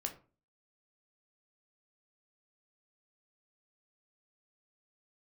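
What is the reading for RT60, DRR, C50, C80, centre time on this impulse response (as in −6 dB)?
0.35 s, 3.5 dB, 12.5 dB, 17.5 dB, 11 ms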